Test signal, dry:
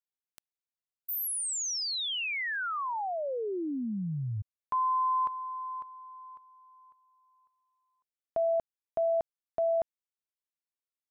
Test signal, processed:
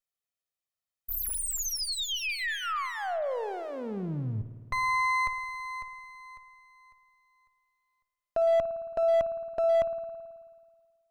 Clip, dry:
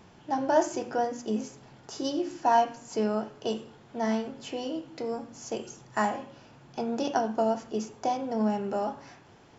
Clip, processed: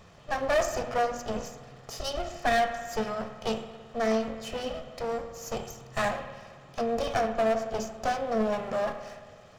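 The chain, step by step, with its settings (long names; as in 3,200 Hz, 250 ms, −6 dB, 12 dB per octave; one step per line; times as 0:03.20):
lower of the sound and its delayed copy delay 1.6 ms
spring reverb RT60 1.7 s, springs 54 ms, chirp 75 ms, DRR 10.5 dB
hard clipping −22.5 dBFS
level +2.5 dB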